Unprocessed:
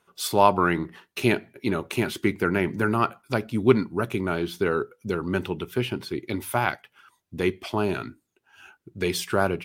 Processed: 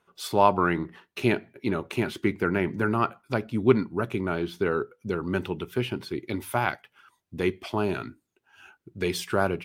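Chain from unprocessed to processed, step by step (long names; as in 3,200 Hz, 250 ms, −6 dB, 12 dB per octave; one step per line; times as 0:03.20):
high-shelf EQ 4,800 Hz −8.5 dB, from 0:05.25 −3.5 dB
level −1.5 dB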